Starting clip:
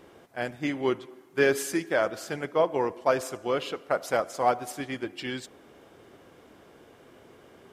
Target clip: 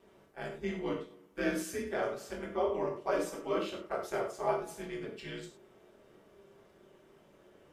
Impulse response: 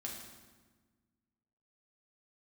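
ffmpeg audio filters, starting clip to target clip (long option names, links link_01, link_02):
-filter_complex "[0:a]asettb=1/sr,asplit=3[link_01][link_02][link_03];[link_01]atrim=end=3.114[link_04];[link_02]atrim=start=3.11:end=3.72,asetpts=PTS-STARTPTS,afade=type=in:duration=0.004:curve=qsin,afade=type=out:start_time=0.606:duration=0.004:curve=qsin,aecho=1:1:2.6:0.93,atrim=end_sample=26901[link_05];[link_03]atrim=start=3.716[link_06];[link_04][link_05]acrossfade=duration=0.004:curve1=hsin:curve2=qsin[link_07];[link_07][link_06]acrossfade=duration=0.004:curve1=qsin:curve2=hsin,aeval=exprs='val(0)*sin(2*PI*96*n/s)':channel_layout=same[link_08];[1:a]atrim=start_sample=2205,afade=type=out:start_time=0.25:duration=0.01,atrim=end_sample=11466,asetrate=74970,aresample=44100[link_09];[link_08][link_09]afir=irnorm=-1:irlink=0"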